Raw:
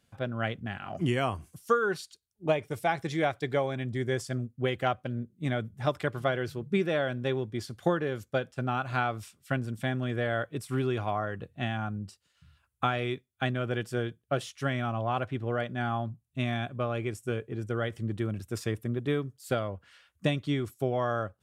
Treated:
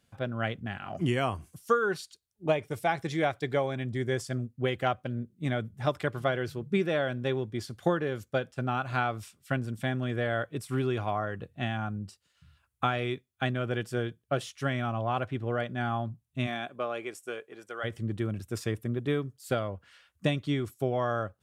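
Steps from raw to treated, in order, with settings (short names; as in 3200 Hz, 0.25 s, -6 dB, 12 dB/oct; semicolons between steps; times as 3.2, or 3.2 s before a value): 16.46–17.83 HPF 260 Hz -> 750 Hz 12 dB/oct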